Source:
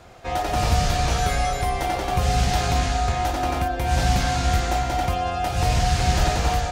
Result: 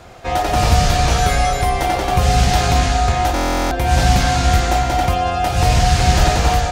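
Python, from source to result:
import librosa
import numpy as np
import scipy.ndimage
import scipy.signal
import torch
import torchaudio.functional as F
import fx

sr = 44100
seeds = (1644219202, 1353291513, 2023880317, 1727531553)

y = fx.buffer_glitch(x, sr, at_s=(3.34,), block=1024, repeats=15)
y = y * librosa.db_to_amplitude(6.5)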